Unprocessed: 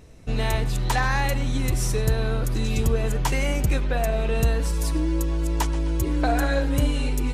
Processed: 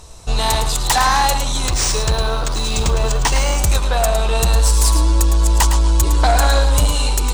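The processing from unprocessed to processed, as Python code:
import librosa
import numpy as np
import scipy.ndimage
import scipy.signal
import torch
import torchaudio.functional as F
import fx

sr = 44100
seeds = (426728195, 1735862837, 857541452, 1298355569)

p1 = fx.graphic_eq_10(x, sr, hz=(125, 250, 500, 1000, 2000, 4000, 8000), db=(-6, -12, -4, 9, -10, 6, 9))
p2 = fx.fold_sine(p1, sr, drive_db=10, ceiling_db=-6.0)
p3 = p2 + fx.echo_single(p2, sr, ms=109, db=-8.5, dry=0)
p4 = fx.resample_linear(p3, sr, factor=3, at=(1.68, 3.58))
y = F.gain(torch.from_numpy(p4), -3.5).numpy()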